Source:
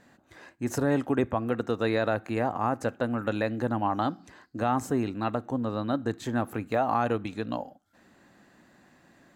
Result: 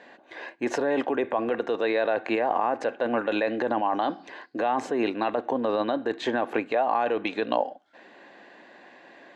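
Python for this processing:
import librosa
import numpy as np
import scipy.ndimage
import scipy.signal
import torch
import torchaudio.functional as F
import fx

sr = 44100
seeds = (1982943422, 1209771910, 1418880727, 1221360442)

p1 = scipy.signal.sosfilt(scipy.signal.cheby1(2, 1.0, [440.0, 3200.0], 'bandpass', fs=sr, output='sos'), x)
p2 = fx.notch(p1, sr, hz=1300.0, q=5.3)
p3 = fx.over_compress(p2, sr, threshold_db=-35.0, ratio=-0.5)
p4 = p2 + (p3 * 10.0 ** (1.5 / 20.0))
y = p4 * 10.0 ** (2.0 / 20.0)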